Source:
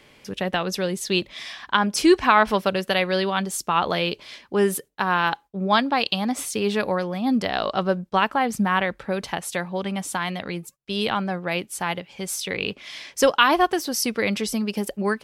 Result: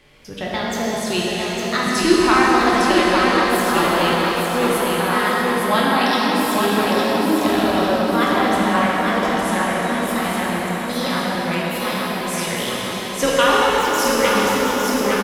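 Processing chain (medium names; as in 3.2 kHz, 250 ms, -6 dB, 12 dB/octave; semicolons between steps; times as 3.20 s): pitch shift switched off and on +3.5 st, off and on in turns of 466 ms; bass shelf 68 Hz +12 dB; feedback delay 858 ms, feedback 49%, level -4.5 dB; plate-style reverb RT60 4.7 s, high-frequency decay 0.75×, DRR -6 dB; trim -3 dB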